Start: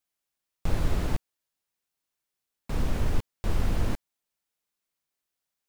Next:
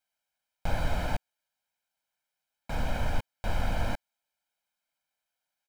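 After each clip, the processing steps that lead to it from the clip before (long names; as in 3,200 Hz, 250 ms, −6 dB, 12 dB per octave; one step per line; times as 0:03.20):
bass and treble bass −10 dB, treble −7 dB
comb filter 1.3 ms, depth 77%
level +1.5 dB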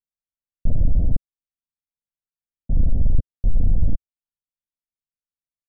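low-shelf EQ 75 Hz +9 dB
leveller curve on the samples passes 3
Gaussian smoothing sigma 22 samples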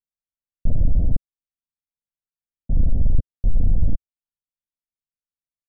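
no processing that can be heard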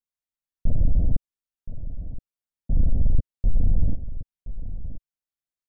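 single-tap delay 1,022 ms −13 dB
level −2 dB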